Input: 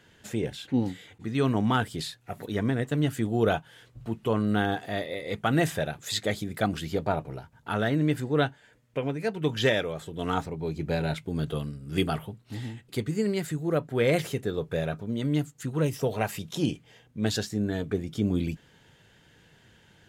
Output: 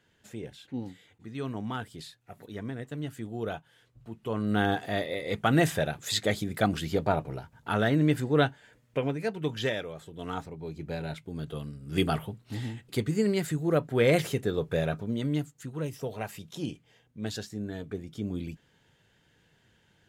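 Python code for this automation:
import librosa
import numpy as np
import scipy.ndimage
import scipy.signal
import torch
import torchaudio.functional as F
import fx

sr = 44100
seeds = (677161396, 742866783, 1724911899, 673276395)

y = fx.gain(x, sr, db=fx.line((4.12, -10.0), (4.66, 1.0), (9.0, 1.0), (9.76, -7.0), (11.47, -7.0), (12.1, 1.0), (15.02, 1.0), (15.73, -7.5)))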